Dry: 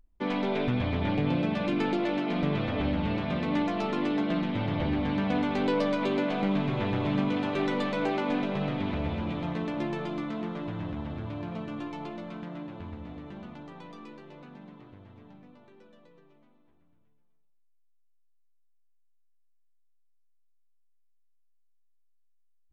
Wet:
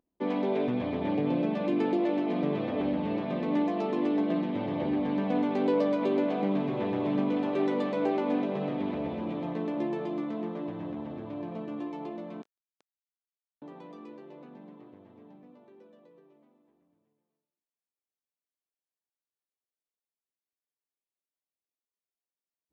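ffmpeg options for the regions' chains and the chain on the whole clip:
ffmpeg -i in.wav -filter_complex "[0:a]asettb=1/sr,asplit=3[link_01][link_02][link_03];[link_01]atrim=end=12.424[link_04];[link_02]atrim=start=12.42:end=13.62,asetpts=PTS-STARTPTS,afade=type=in:duration=0.004:curve=qsin,afade=type=out:start_time=1.196:duration=0.004:curve=qsin,highpass=frequency=690:poles=1,acontrast=80,acrusher=bits=3:mix=0:aa=0.5[link_05];[link_03]atrim=start=13.616[link_06];[link_04][link_05]acrossfade=duration=0.004:curve1=hsin:curve2=qsin[link_07];[link_07][link_06]acrossfade=duration=0.004:curve1=qsin:curve2=hsin,highpass=340,tiltshelf=frequency=720:gain=8.5,bandreject=frequency=1400:width=9.2" out.wav

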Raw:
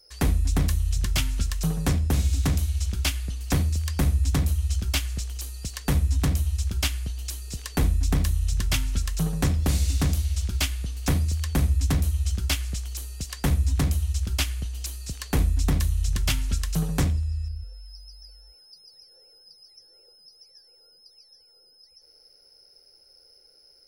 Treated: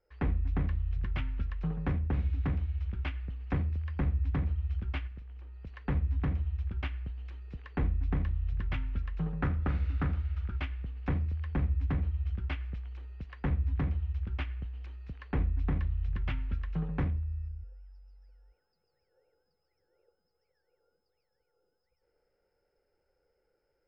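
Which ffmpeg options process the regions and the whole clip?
ffmpeg -i in.wav -filter_complex "[0:a]asettb=1/sr,asplit=3[link_01][link_02][link_03];[link_01]atrim=end=5.074[link_04];[link_02]atrim=start=5.07:end=5.67,asetpts=PTS-STARTPTS,afade=type=in:duration=0.004:curve=qsin,afade=type=out:start_time=0.596:duration=0.004:curve=qsin,acrossover=split=1300|3200[link_05][link_06][link_07];[link_05]acompressor=threshold=-35dB:ratio=4[link_08];[link_06]acompressor=threshold=-59dB:ratio=4[link_09];[link_07]acompressor=threshold=-50dB:ratio=4[link_10];[link_08][link_09][link_10]amix=inputs=3:normalize=0,asplit=2[link_11][link_12];[link_12]adelay=43,volume=-13.5dB[link_13];[link_11][link_13]amix=inputs=2:normalize=0,atrim=end_sample=26460[link_14];[link_03]atrim=start=5.666[link_15];[link_04][link_14]acrossfade=duration=0.004:curve1=hsin:curve2=qsin[link_16];[link_16][link_15]acrossfade=duration=0.004:curve1=qsin:curve2=hsin,asettb=1/sr,asplit=3[link_17][link_18][link_19];[link_17]atrim=end=9.424[link_20];[link_18]atrim=start=9.42:end=10.58,asetpts=PTS-STARTPTS,afade=type=in:duration=0.004:curve=qsin,afade=type=out:start_time=1.156:duration=0.004:curve=qsin,equalizer=frequency=1300:width=2.2:gain=10,bandreject=frequency=1100:width=13[link_21];[link_19]atrim=start=10.576[link_22];[link_20][link_21]acrossfade=duration=0.004:curve1=hsin:curve2=qsin[link_23];[link_23][link_22]acrossfade=duration=0.004:curve1=qsin:curve2=hsin,lowpass=frequency=2300:width=0.5412,lowpass=frequency=2300:width=1.3066,bandreject=frequency=650:width=12,volume=-7.5dB" out.wav

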